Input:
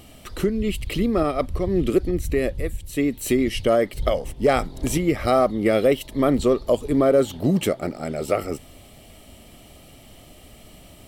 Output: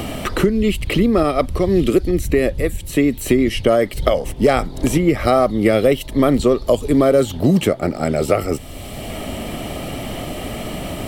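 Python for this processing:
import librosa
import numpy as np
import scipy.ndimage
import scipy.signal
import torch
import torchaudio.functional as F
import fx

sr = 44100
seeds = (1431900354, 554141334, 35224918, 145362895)

y = fx.band_squash(x, sr, depth_pct=70)
y = F.gain(torch.from_numpy(y), 5.0).numpy()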